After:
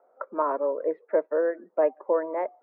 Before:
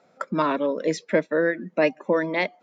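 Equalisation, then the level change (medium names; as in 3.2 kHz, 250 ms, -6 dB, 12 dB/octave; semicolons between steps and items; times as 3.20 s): high-pass 410 Hz 24 dB/octave; low-pass 1.2 kHz 24 dB/octave; distance through air 150 m; 0.0 dB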